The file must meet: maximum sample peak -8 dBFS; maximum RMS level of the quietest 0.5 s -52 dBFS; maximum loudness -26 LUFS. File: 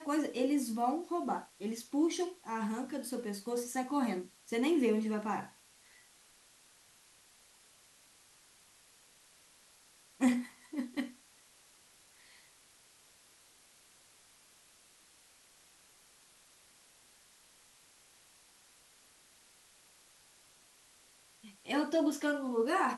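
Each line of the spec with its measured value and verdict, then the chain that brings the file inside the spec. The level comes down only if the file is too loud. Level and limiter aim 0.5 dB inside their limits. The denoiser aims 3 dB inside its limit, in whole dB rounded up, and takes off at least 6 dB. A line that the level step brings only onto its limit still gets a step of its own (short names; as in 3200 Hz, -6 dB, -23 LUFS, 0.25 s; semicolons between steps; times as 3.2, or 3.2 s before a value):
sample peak -18.0 dBFS: OK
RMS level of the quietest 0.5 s -63 dBFS: OK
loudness -34.5 LUFS: OK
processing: none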